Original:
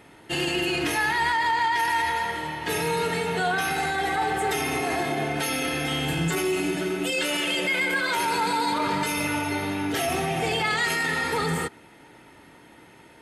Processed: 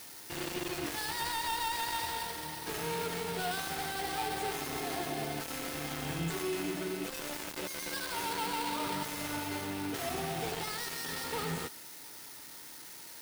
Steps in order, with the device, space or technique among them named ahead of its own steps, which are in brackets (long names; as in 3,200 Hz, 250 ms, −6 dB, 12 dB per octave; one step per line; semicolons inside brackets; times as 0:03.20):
budget class-D amplifier (gap after every zero crossing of 0.21 ms; spike at every zero crossing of −22.5 dBFS)
level −9 dB